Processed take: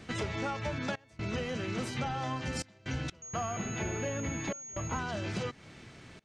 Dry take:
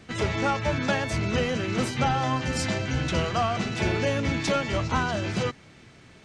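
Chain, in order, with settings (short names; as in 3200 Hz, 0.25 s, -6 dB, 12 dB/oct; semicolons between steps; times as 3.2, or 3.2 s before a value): compressor 4:1, threshold -33 dBFS, peak gain reduction 11.5 dB; step gate "xxxx.xxxxxx.x.x" 63 bpm -24 dB; 3.22–4.99 pulse-width modulation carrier 6600 Hz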